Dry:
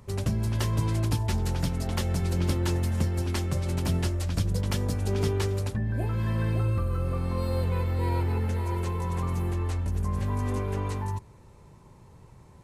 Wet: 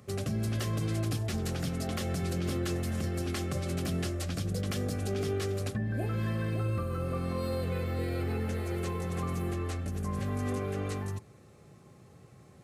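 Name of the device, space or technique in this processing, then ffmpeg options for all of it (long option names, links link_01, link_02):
PA system with an anti-feedback notch: -af "highpass=120,asuperstop=centerf=940:order=8:qfactor=4.8,alimiter=limit=-23.5dB:level=0:latency=1:release=30"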